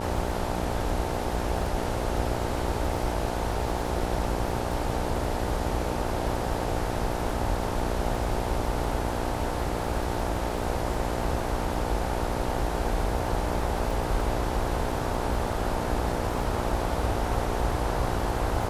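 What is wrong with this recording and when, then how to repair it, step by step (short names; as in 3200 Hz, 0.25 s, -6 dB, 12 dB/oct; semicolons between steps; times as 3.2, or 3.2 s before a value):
buzz 60 Hz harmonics 15 -32 dBFS
crackle 28/s -35 dBFS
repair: de-click; de-hum 60 Hz, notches 15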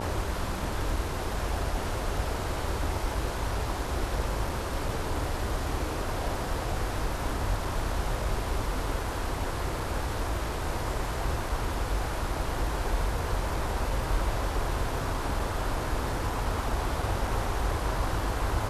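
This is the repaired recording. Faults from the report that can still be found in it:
none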